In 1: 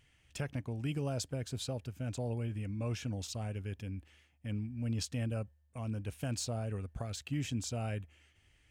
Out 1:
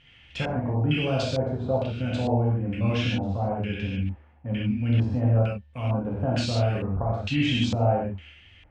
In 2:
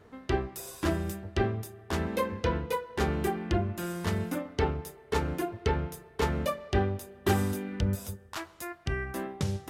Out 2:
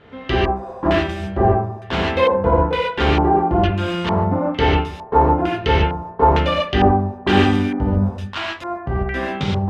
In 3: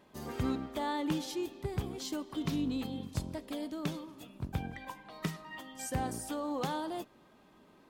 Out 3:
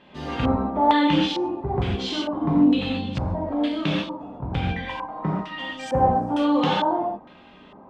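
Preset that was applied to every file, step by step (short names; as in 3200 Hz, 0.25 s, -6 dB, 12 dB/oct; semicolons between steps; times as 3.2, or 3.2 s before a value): non-linear reverb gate 0.17 s flat, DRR -5 dB; LFO low-pass square 1.1 Hz 900–3100 Hz; gain +6 dB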